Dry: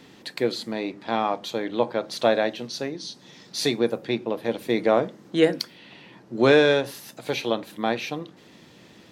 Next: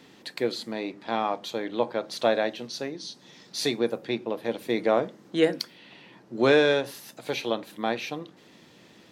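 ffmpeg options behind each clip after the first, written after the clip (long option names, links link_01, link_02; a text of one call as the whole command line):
ffmpeg -i in.wav -af "lowshelf=frequency=110:gain=-7,volume=-2.5dB" out.wav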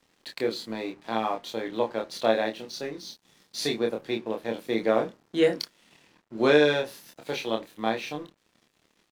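ffmpeg -i in.wav -filter_complex "[0:a]aeval=exprs='sgn(val(0))*max(abs(val(0))-0.00316,0)':channel_layout=same,asplit=2[link_01][link_02];[link_02]adelay=27,volume=-3.5dB[link_03];[link_01][link_03]amix=inputs=2:normalize=0,volume=-2dB" out.wav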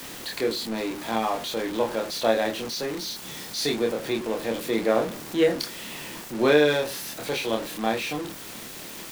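ffmpeg -i in.wav -af "aeval=exprs='val(0)+0.5*0.0335*sgn(val(0))':channel_layout=same" out.wav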